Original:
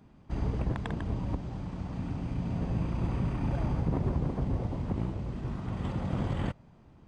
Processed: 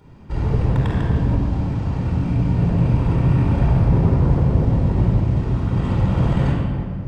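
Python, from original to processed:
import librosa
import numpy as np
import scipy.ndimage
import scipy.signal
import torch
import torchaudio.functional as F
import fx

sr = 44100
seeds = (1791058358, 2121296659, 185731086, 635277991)

p1 = np.clip(10.0 ** (34.5 / 20.0) * x, -1.0, 1.0) / 10.0 ** (34.5 / 20.0)
p2 = x + F.gain(torch.from_numpy(p1), -3.5).numpy()
p3 = fx.room_shoebox(p2, sr, seeds[0], volume_m3=3800.0, walls='mixed', distance_m=4.5)
y = F.gain(torch.from_numpy(p3), 2.0).numpy()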